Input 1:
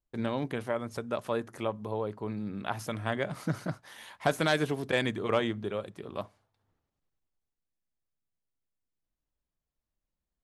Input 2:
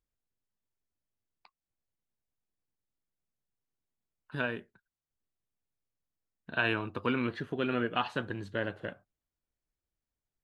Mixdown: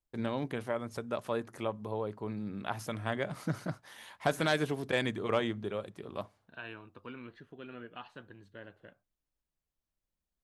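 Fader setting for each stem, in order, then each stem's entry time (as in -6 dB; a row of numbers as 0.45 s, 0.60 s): -2.5 dB, -15.5 dB; 0.00 s, 0.00 s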